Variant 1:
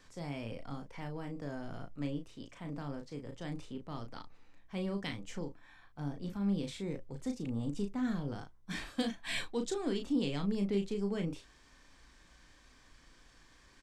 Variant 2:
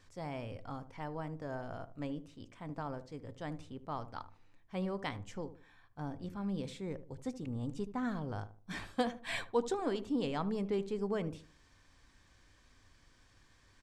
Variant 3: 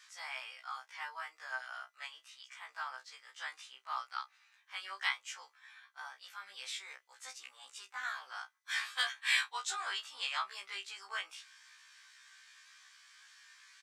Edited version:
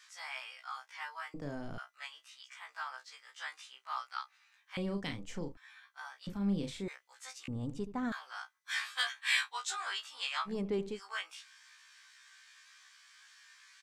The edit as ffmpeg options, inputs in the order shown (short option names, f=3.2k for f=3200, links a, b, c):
-filter_complex "[0:a]asplit=3[a][b][c];[1:a]asplit=2[d][e];[2:a]asplit=6[f][g][h][i][j][k];[f]atrim=end=1.342[l];[a]atrim=start=1.338:end=1.782[m];[g]atrim=start=1.778:end=4.772[n];[b]atrim=start=4.768:end=5.572[o];[h]atrim=start=5.568:end=6.272[p];[c]atrim=start=6.268:end=6.882[q];[i]atrim=start=6.878:end=7.482[r];[d]atrim=start=7.478:end=8.122[s];[j]atrim=start=8.118:end=10.55[t];[e]atrim=start=10.45:end=11[u];[k]atrim=start=10.9[v];[l][m]acrossfade=d=0.004:c1=hsin:c2=hsin[w];[w][n]acrossfade=d=0.004:c1=hsin:c2=hsin[x];[x][o]acrossfade=d=0.004:c1=hsin:c2=hsin[y];[y][p]acrossfade=d=0.004:c1=hsin:c2=hsin[z];[z][q]acrossfade=d=0.004:c1=hsin:c2=hsin[aa];[aa][r]acrossfade=d=0.004:c1=hsin:c2=hsin[ab];[ab][s]acrossfade=d=0.004:c1=hsin:c2=hsin[ac];[ac][t]acrossfade=d=0.004:c1=hsin:c2=hsin[ad];[ad][u]acrossfade=d=0.1:c1=tri:c2=tri[ae];[ae][v]acrossfade=d=0.1:c1=tri:c2=tri"